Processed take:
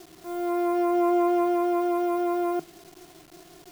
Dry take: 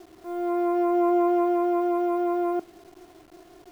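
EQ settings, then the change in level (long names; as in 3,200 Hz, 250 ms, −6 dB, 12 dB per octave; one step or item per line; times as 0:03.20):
parametric band 160 Hz +14 dB 0.32 octaves
high-shelf EQ 2,300 Hz +11 dB
−1.5 dB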